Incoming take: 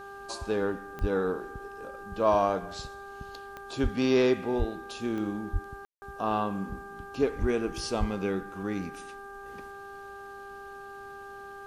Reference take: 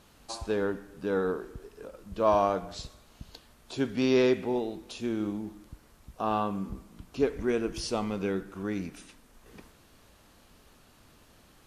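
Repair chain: de-click; de-hum 397.8 Hz, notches 4; de-plosive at 1/3.82/4.58/5.52/7.4/7.99; room tone fill 5.85–6.02

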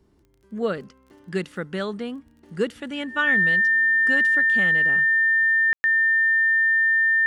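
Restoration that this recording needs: de-click; notch 1800 Hz, Q 30; room tone fill 5.73–5.84

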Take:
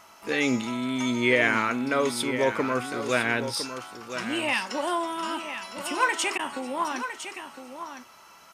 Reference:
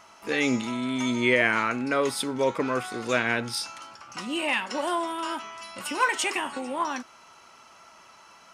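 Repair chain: interpolate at 6.38, 10 ms; expander -36 dBFS, range -21 dB; inverse comb 1.008 s -10 dB

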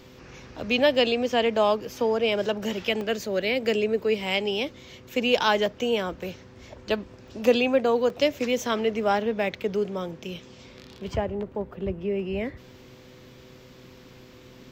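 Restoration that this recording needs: de-hum 126.5 Hz, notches 4; interpolate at 3.01/4.71/7.28/8.1/11.1, 1.7 ms

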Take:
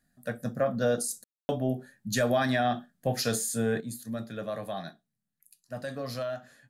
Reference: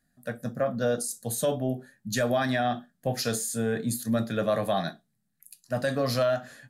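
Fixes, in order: room tone fill 1.24–1.49; gain 0 dB, from 3.8 s +9 dB

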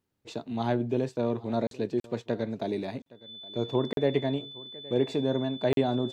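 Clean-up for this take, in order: notch 3500 Hz, Q 30; interpolate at 1.67/2/3.02/3.93/5.73, 42 ms; inverse comb 0.817 s -21.5 dB

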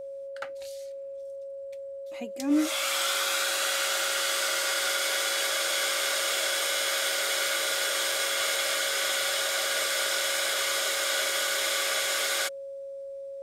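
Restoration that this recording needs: notch 550 Hz, Q 30

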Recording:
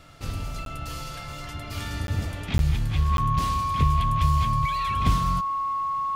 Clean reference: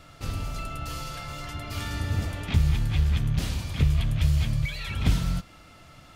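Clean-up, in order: notch 1100 Hz, Q 30; interpolate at 0.65/2.07/2.58/3.17, 12 ms

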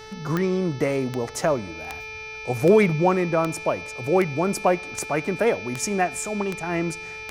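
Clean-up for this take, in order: de-click; de-hum 436.3 Hz, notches 14; notch 2400 Hz, Q 30; expander -28 dBFS, range -21 dB

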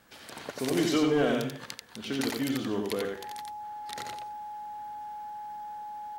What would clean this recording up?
clip repair -18.5 dBFS; notch 840 Hz, Q 30; inverse comb 88 ms -3.5 dB

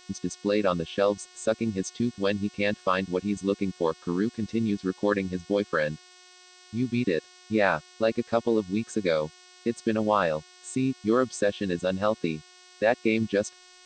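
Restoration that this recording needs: de-hum 363.8 Hz, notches 17; denoiser 18 dB, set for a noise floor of -53 dBFS

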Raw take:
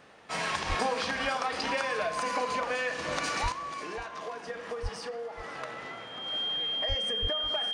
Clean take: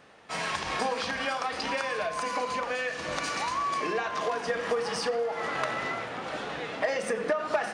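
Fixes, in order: notch 3200 Hz, Q 30; de-plosive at 0.68/3.42/4.82/6.88/7.21; inverse comb 0.542 s -15 dB; gain correction +9 dB, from 3.52

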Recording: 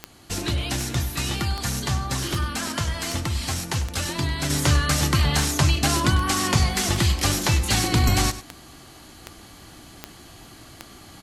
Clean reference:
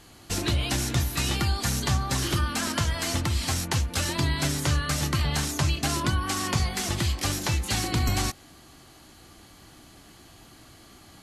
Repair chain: de-click; inverse comb 98 ms -14 dB; gain 0 dB, from 4.5 s -5.5 dB

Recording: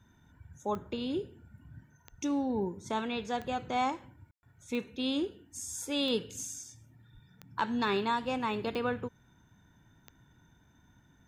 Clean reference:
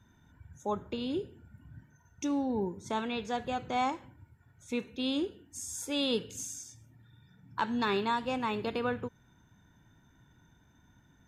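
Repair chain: de-click; 2.1–2.22 HPF 140 Hz 24 dB/oct; 7.13–7.25 HPF 140 Hz 24 dB/oct; room tone fill 4.31–4.43

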